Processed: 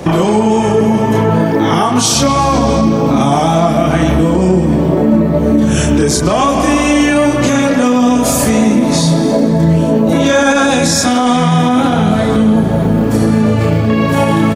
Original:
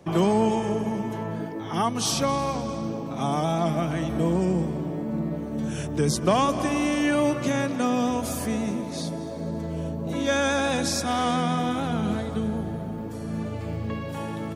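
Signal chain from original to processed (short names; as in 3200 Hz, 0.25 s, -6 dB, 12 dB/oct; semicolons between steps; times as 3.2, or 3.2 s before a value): dynamic EQ 7100 Hz, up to +5 dB, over -51 dBFS, Q 3.7; compressor 12:1, threshold -34 dBFS, peak gain reduction 18.5 dB; speakerphone echo 0.13 s, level -7 dB; chorus voices 6, 0.81 Hz, delay 30 ms, depth 2.2 ms; maximiser +31 dB; gain -1 dB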